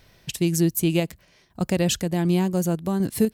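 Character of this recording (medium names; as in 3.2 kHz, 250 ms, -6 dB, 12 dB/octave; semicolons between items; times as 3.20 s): random-step tremolo 4 Hz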